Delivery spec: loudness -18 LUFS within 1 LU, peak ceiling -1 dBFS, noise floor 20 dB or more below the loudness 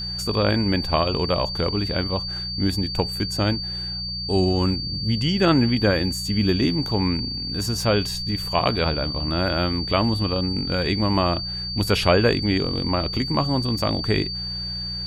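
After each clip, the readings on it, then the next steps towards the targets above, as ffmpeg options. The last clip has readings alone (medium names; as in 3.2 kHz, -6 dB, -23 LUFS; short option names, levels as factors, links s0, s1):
hum 60 Hz; highest harmonic 180 Hz; hum level -32 dBFS; steady tone 4.6 kHz; tone level -28 dBFS; loudness -22.5 LUFS; peak level -3.5 dBFS; loudness target -18.0 LUFS
-> -af "bandreject=f=60:t=h:w=4,bandreject=f=120:t=h:w=4,bandreject=f=180:t=h:w=4"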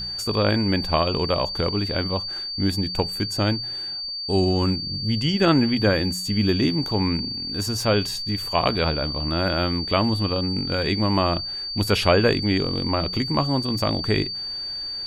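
hum not found; steady tone 4.6 kHz; tone level -28 dBFS
-> -af "bandreject=f=4600:w=30"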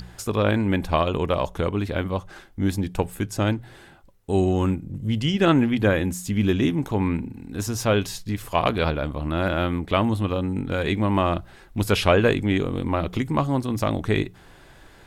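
steady tone not found; loudness -24.0 LUFS; peak level -3.5 dBFS; loudness target -18.0 LUFS
-> -af "volume=2,alimiter=limit=0.891:level=0:latency=1"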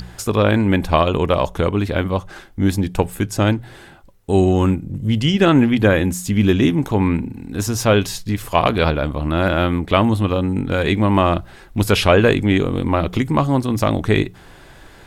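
loudness -18.0 LUFS; peak level -1.0 dBFS; noise floor -43 dBFS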